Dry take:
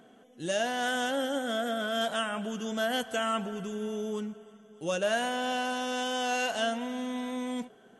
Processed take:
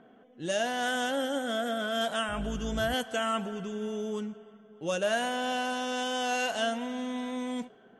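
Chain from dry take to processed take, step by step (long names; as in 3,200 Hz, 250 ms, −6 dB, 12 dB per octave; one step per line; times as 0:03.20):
0:02.28–0:02.94: sub-octave generator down 2 octaves, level 0 dB
low-pass that shuts in the quiet parts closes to 2,200 Hz, open at −27 dBFS
floating-point word with a short mantissa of 8 bits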